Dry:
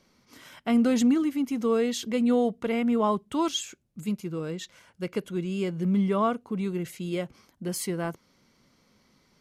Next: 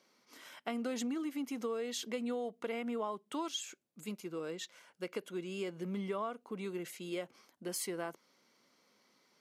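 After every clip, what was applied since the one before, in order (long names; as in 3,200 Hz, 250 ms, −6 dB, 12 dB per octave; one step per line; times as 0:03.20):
high-pass filter 340 Hz 12 dB per octave
downward compressor 6 to 1, threshold −30 dBFS, peak gain reduction 9.5 dB
level −4 dB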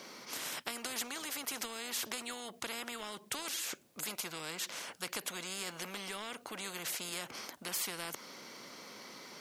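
every bin compressed towards the loudest bin 4 to 1
level +2.5 dB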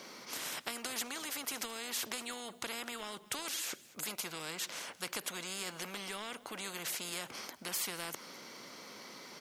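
single-tap delay 215 ms −20.5 dB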